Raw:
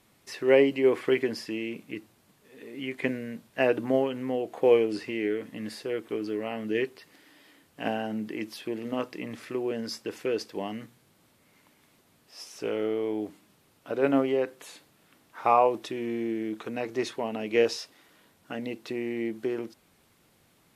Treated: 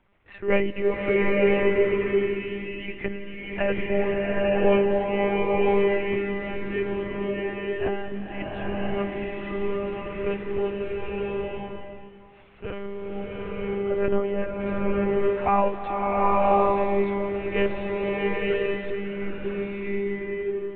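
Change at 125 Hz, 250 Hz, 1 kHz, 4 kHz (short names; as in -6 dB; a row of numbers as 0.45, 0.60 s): +9.5, +2.5, +5.5, -0.5 dB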